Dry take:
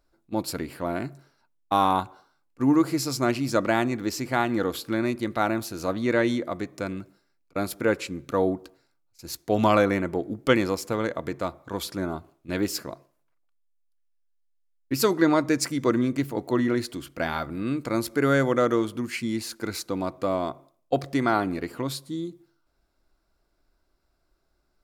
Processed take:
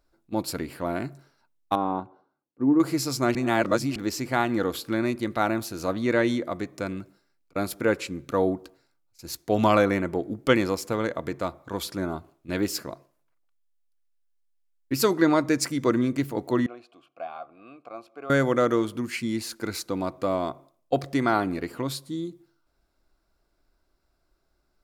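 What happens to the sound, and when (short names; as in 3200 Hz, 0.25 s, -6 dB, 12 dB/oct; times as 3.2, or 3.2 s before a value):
1.75–2.8 band-pass 310 Hz, Q 0.84
3.35–3.96 reverse
16.66–18.3 vowel filter a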